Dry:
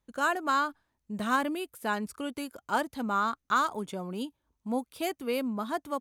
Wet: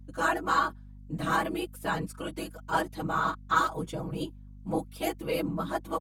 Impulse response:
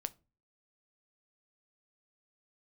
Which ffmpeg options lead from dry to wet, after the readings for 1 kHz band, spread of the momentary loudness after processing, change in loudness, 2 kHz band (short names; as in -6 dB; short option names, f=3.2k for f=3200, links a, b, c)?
+0.5 dB, 11 LU, +0.5 dB, +0.5 dB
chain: -af "afftfilt=real='hypot(re,im)*cos(2*PI*random(0))':imag='hypot(re,im)*sin(2*PI*random(1))':win_size=512:overlap=0.75,aecho=1:1:6.2:0.85,aeval=exprs='val(0)+0.00316*(sin(2*PI*50*n/s)+sin(2*PI*2*50*n/s)/2+sin(2*PI*3*50*n/s)/3+sin(2*PI*4*50*n/s)/4+sin(2*PI*5*50*n/s)/5)':c=same,volume=4dB"